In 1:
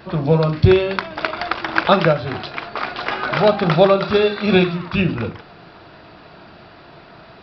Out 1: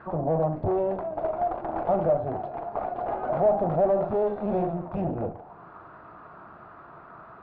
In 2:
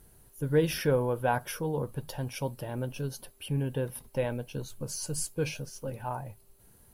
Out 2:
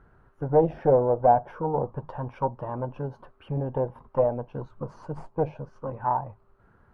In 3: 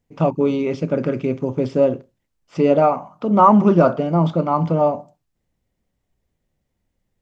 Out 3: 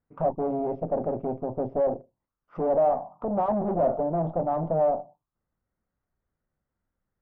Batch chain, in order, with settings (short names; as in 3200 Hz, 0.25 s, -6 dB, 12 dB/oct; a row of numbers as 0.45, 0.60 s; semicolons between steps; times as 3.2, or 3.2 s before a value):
tube stage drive 22 dB, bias 0.75; envelope low-pass 700–1400 Hz down, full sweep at -29.5 dBFS; match loudness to -27 LUFS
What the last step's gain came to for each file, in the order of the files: -4.0, +6.0, -5.0 dB